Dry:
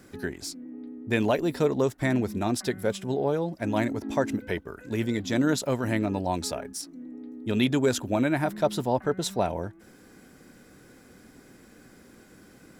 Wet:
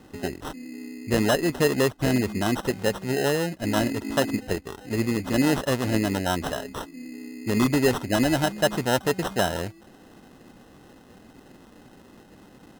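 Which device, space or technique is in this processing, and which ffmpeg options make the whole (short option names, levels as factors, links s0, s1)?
crushed at another speed: -af "asetrate=35280,aresample=44100,acrusher=samples=24:mix=1:aa=0.000001,asetrate=55125,aresample=44100,volume=1.33"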